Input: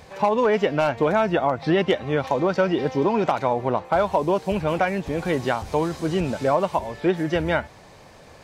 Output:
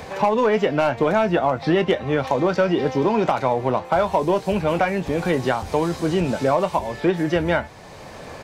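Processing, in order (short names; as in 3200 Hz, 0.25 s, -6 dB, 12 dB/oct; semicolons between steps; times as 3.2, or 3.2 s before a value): in parallel at -11.5 dB: hard clip -21.5 dBFS, distortion -8 dB; on the sum: doubler 23 ms -13 dB; three-band squash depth 40%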